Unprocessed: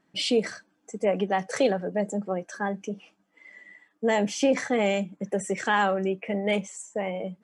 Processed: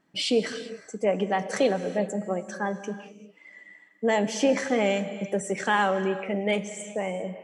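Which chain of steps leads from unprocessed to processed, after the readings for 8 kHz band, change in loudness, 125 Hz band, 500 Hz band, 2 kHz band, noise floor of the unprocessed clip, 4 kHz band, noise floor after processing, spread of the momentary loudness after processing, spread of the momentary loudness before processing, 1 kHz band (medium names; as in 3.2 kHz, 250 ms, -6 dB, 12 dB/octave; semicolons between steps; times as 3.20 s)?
+0.5 dB, 0.0 dB, 0.0 dB, +0.5 dB, +0.5 dB, -70 dBFS, +0.5 dB, -57 dBFS, 10 LU, 11 LU, 0.0 dB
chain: gated-style reverb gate 420 ms flat, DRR 11 dB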